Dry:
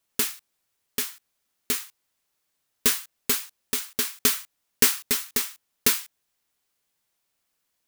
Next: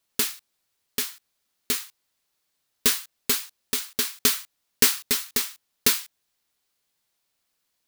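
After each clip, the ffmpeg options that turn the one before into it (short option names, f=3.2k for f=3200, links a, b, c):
-af "equalizer=f=4.2k:w=1.9:g=3.5"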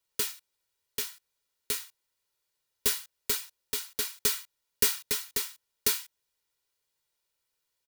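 -filter_complex "[0:a]aecho=1:1:2.1:0.52,acrossover=split=260|470|6000[a][b][c][d];[c]asoftclip=type=tanh:threshold=-19dB[e];[a][b][e][d]amix=inputs=4:normalize=0,volume=-6.5dB"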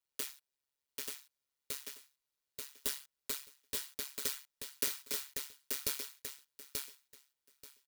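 -filter_complex "[0:a]tremolo=f=140:d=0.919,asplit=2[a][b];[b]aecho=0:1:884|1768|2652:0.631|0.107|0.0182[c];[a][c]amix=inputs=2:normalize=0,volume=-6dB"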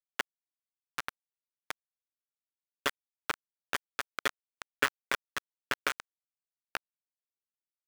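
-af "afftfilt=real='re*between(b*sr/4096,220,3600)':imag='im*between(b*sr/4096,220,3600)':win_size=4096:overlap=0.75,acrusher=bits=5:mix=0:aa=0.000001,equalizer=f=1.4k:w=0.86:g=15,volume=7dB"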